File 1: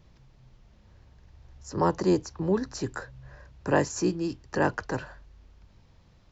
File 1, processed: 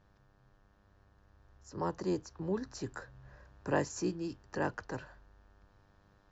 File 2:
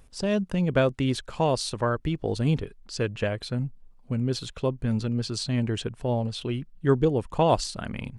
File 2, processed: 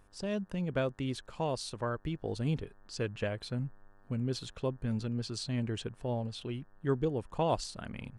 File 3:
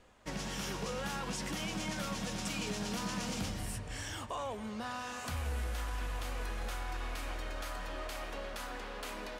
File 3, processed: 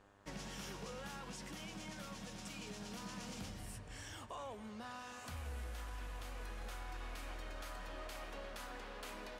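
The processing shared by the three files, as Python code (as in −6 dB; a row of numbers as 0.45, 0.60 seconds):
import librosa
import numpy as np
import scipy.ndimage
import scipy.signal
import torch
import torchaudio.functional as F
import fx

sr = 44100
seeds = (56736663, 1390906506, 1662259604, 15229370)

y = fx.dmg_buzz(x, sr, base_hz=100.0, harmonics=18, level_db=-60.0, tilt_db=-2, odd_only=False)
y = fx.rider(y, sr, range_db=3, speed_s=2.0)
y = y * 10.0 ** (-9.0 / 20.0)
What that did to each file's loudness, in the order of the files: −9.0, −8.5, −9.0 LU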